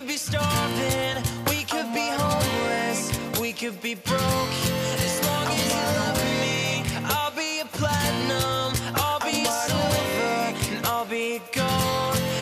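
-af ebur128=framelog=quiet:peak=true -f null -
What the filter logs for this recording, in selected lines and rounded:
Integrated loudness:
  I:         -24.5 LUFS
  Threshold: -34.4 LUFS
Loudness range:
  LRA:         1.2 LU
  Threshold: -44.4 LUFS
  LRA low:   -25.0 LUFS
  LRA high:  -23.8 LUFS
True peak:
  Peak:      -13.5 dBFS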